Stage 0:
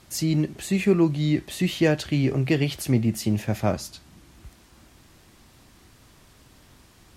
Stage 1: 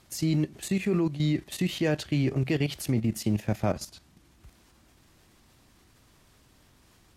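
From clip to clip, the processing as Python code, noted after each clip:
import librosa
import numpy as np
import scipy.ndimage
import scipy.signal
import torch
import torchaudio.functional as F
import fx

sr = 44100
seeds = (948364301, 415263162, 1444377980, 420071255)

y = fx.level_steps(x, sr, step_db=12)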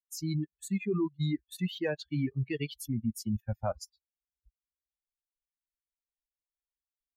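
y = fx.bin_expand(x, sr, power=3.0)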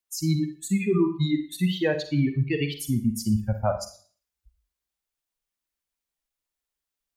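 y = fx.rev_schroeder(x, sr, rt60_s=0.44, comb_ms=38, drr_db=7.0)
y = y * 10.0 ** (7.5 / 20.0)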